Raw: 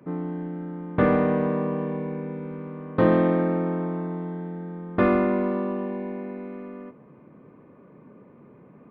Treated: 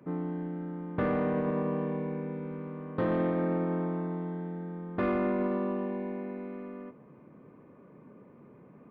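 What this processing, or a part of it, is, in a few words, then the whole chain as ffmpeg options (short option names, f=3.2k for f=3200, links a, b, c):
soft clipper into limiter: -af "asoftclip=type=tanh:threshold=-12dB,alimiter=limit=-18.5dB:level=0:latency=1:release=31,volume=-3.5dB"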